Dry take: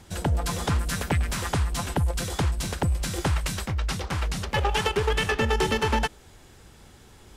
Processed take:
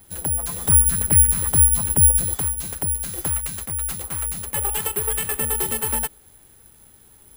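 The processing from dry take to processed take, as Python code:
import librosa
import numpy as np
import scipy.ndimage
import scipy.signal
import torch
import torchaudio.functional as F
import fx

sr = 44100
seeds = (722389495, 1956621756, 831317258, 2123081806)

y = fx.low_shelf(x, sr, hz=230.0, db=11.0, at=(0.65, 2.34))
y = (np.kron(scipy.signal.resample_poly(y, 1, 4), np.eye(4)[0]) * 4)[:len(y)]
y = y * librosa.db_to_amplitude(-6.0)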